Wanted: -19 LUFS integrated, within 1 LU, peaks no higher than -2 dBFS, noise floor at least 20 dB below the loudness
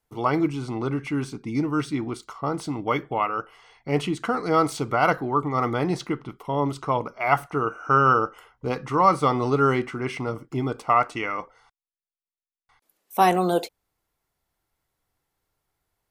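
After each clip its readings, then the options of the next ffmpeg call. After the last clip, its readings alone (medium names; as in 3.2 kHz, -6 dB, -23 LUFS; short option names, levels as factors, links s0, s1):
loudness -24.5 LUFS; peak level -5.5 dBFS; loudness target -19.0 LUFS
-> -af "volume=1.88,alimiter=limit=0.794:level=0:latency=1"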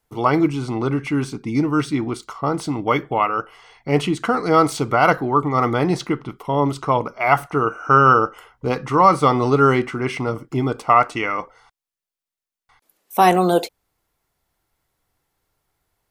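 loudness -19.0 LUFS; peak level -2.0 dBFS; noise floor -89 dBFS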